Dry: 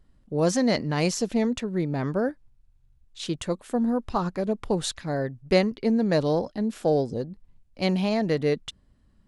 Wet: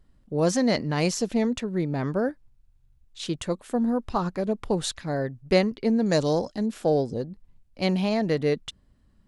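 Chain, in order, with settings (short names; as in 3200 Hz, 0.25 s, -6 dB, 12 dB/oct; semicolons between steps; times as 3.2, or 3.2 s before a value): 6.06–6.66 bell 7100 Hz +14.5 dB 0.8 oct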